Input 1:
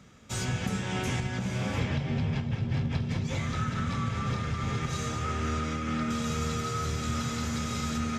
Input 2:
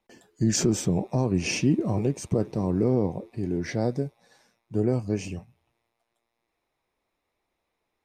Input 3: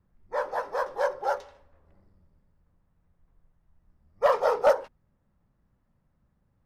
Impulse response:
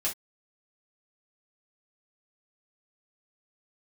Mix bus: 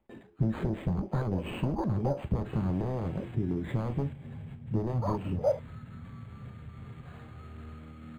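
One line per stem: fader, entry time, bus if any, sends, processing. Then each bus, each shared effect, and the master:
-9.5 dB, 2.15 s, no send, pre-emphasis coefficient 0.8
-4.5 dB, 0.00 s, send -9 dB, one-sided fold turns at -22 dBFS; compressor 5:1, threshold -34 dBFS, peak gain reduction 14.5 dB
+2.5 dB, 0.80 s, no send, compressor 2:1, threshold -36 dBFS, peak gain reduction 11.5 dB; stepped band-pass 4.8 Hz 260–4800 Hz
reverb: on, pre-delay 3 ms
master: low shelf 390 Hz +11.5 dB; decimation joined by straight lines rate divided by 8×

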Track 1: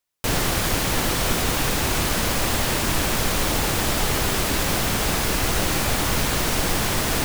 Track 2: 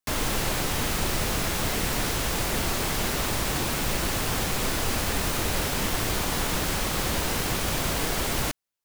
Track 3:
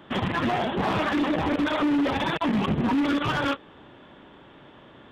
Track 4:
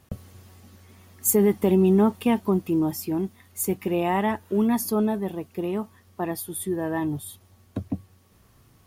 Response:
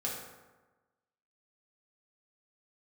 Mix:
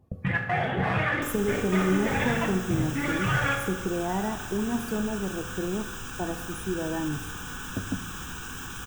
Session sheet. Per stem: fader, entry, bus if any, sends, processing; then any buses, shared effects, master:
off
-10.5 dB, 1.15 s, bus A, send -7 dB, bell 1600 Hz +10 dB 0.41 oct; fixed phaser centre 3000 Hz, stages 8
-2.0 dB, 0.00 s, bus B, send -4.5 dB, graphic EQ 125/250/1000/2000/4000 Hz +9/-11/-5/+8/-5 dB; step gate "..x.xxxxxx" 122 bpm -60 dB
-8.0 dB, 0.00 s, bus B, send -11.5 dB, tilt shelf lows +5 dB, about 1400 Hz
bus A: 0.0 dB, high shelf 8700 Hz +8 dB; limiter -32 dBFS, peak gain reduction 9.5 dB
bus B: 0.0 dB, loudest bins only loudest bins 32; compressor, threshold -28 dBFS, peak gain reduction 10 dB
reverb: on, RT60 1.2 s, pre-delay 3 ms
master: dry

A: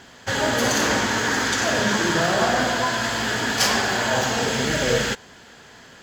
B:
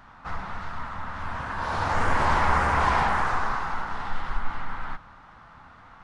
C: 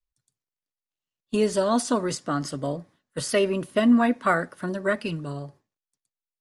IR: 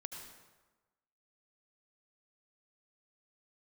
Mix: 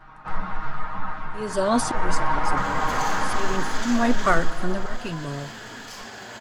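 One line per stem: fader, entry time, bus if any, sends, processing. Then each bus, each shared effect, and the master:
4.26 s -12.5 dB -> 4.66 s -19.5 dB, 2.30 s, no send, limiter -17.5 dBFS, peak gain reduction 9.5 dB; AGC gain up to 7 dB
+2.5 dB, 0.00 s, send -10.5 dB, high shelf 4000 Hz -11 dB; comb 6.4 ms, depth 97%; ensemble effect; auto duck -7 dB, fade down 0.25 s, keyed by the third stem
+1.5 dB, 0.00 s, no send, auto swell 0.35 s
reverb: on, RT60 1.2 s, pre-delay 68 ms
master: dry

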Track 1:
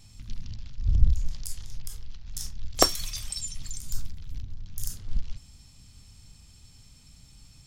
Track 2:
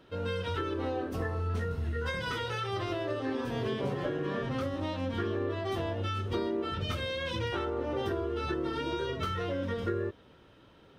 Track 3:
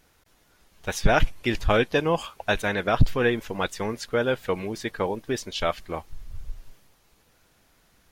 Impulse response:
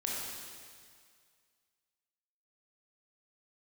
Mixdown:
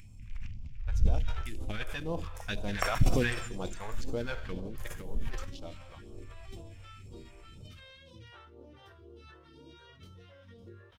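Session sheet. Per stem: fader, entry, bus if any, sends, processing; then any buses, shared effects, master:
-11.0 dB, 0.00 s, send -7 dB, resonant high shelf 3100 Hz -10 dB, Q 3; upward compressor, threshold -36 dBFS
-17.0 dB, 0.80 s, no send, upward compressor, threshold -50 dBFS
1.49 s -20.5 dB -> 2.24 s -9 dB -> 4.48 s -9 dB -> 4.94 s -18 dB, 0.00 s, send -13 dB, Wiener smoothing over 15 samples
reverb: on, RT60 2.0 s, pre-delay 18 ms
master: bell 420 Hz -4 dB 0.24 oct; phaser stages 2, 2 Hz, lowest notch 230–1800 Hz; sustainer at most 50 dB/s

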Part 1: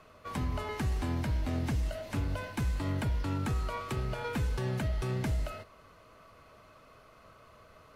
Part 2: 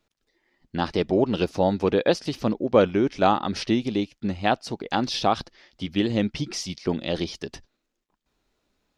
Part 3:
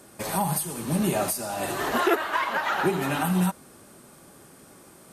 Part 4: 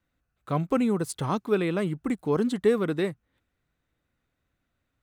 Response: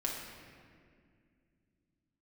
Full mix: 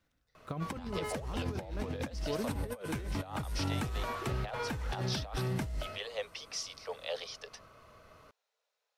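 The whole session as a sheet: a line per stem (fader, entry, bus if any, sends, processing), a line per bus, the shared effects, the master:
-3.5 dB, 0.35 s, no send, dry
-11.0 dB, 0.00 s, no send, steep high-pass 440 Hz 96 dB/oct
-19.0 dB, 2.15 s, no send, compressor, threshold -25 dBFS, peak gain reduction 8.5 dB
-2.0 dB, 0.00 s, no send, auto duck -12 dB, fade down 1.20 s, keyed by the second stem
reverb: off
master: negative-ratio compressor -35 dBFS, ratio -0.5; bell 5600 Hz +3 dB 0.22 oct

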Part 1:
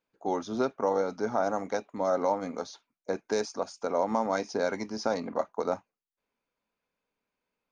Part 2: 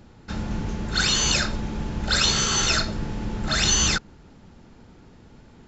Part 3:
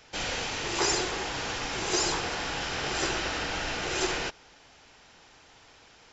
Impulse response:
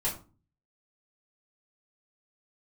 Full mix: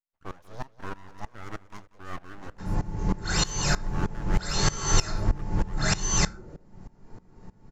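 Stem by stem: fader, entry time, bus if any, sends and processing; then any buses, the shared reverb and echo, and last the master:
-3.5 dB, 0.00 s, no send, echo send -11.5 dB, full-wave rectifier
0.0 dB, 2.30 s, send -5 dB, no echo send, bell 3300 Hz -11.5 dB 0.99 oct
-8.5 dB, 2.35 s, no send, no echo send, elliptic low-pass 600 Hz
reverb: on, RT60 0.35 s, pre-delay 3 ms
echo: feedback echo 0.187 s, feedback 26%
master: dB-ramp tremolo swelling 3.2 Hz, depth 20 dB

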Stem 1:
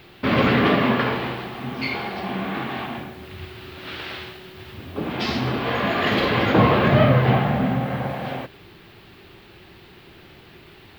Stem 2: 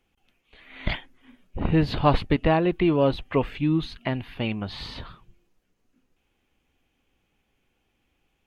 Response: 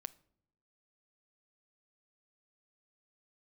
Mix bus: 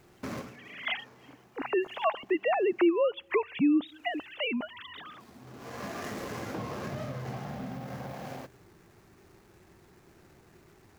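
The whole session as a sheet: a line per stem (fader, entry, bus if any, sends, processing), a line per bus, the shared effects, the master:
-10.5 dB, 0.00 s, send -17 dB, median filter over 15 samples; compressor 4:1, threshold -26 dBFS, peak gain reduction 12.5 dB; auto duck -23 dB, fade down 0.20 s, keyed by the second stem
+1.0 dB, 0.00 s, send -10 dB, sine-wave speech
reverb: on, pre-delay 7 ms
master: high shelf 4700 Hz +9.5 dB; de-hum 60.46 Hz, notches 2; compressor 2:1, threshold -29 dBFS, peak gain reduction 11 dB

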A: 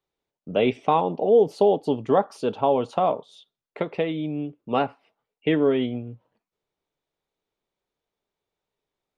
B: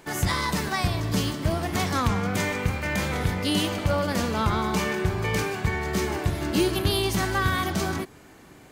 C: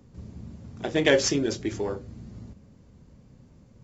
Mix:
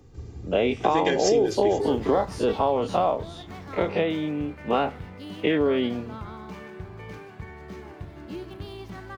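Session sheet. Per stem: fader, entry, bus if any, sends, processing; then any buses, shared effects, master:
0.0 dB, 0.00 s, no send, spectral dilation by 60 ms; HPF 160 Hz; compressor, threshold -18 dBFS, peak gain reduction 7.5 dB
-13.5 dB, 1.75 s, no send, median filter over 5 samples; high shelf 3100 Hz -9 dB
+1.5 dB, 0.00 s, no send, comb 2.5 ms, depth 73%; compressor 2.5:1, threshold -28 dBFS, peak gain reduction 10 dB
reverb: off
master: dry

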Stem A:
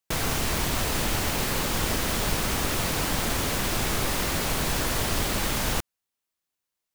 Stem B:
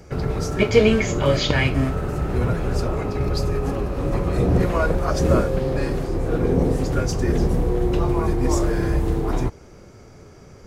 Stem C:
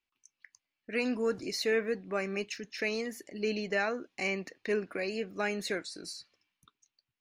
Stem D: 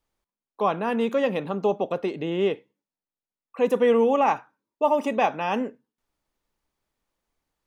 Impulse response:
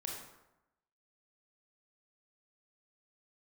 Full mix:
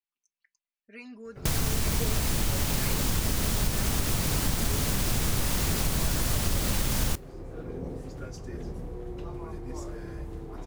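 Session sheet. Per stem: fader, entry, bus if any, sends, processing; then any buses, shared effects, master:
-1.5 dB, 1.35 s, no send, tone controls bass +10 dB, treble +6 dB
-17.5 dB, 1.25 s, no send, dry
-16.0 dB, 0.00 s, no send, comb 5 ms, depth 94%
-16.5 dB, 1.50 s, no send, spectral contrast lowered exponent 0.13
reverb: off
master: compressor 3:1, threshold -24 dBFS, peak gain reduction 8.5 dB

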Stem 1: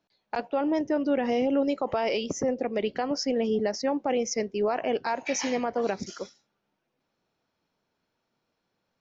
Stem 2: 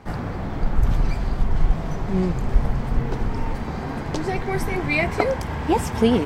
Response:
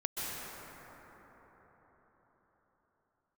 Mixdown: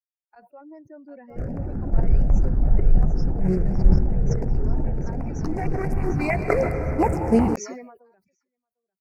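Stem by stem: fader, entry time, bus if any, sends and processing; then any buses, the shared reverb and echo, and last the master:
-15.5 dB, 0.00 s, no send, echo send -6.5 dB, per-bin expansion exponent 2
-1.0 dB, 1.30 s, send -7.5 dB, no echo send, Wiener smoothing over 41 samples; step phaser 11 Hz 250–2200 Hz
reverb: on, RT60 5.0 s, pre-delay 0.118 s
echo: feedback echo 0.749 s, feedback 31%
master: Butterworth band-stop 3400 Hz, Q 1.3; sustainer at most 64 dB/s

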